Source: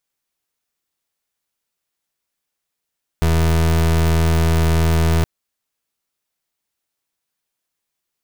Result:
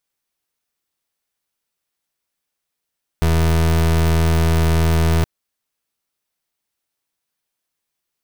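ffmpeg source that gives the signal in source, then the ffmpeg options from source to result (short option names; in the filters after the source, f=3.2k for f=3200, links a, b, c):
-f lavfi -i "aevalsrc='0.178*(2*lt(mod(81.5*t,1),0.3)-1)':d=2.02:s=44100"
-af "bandreject=f=7k:w=21"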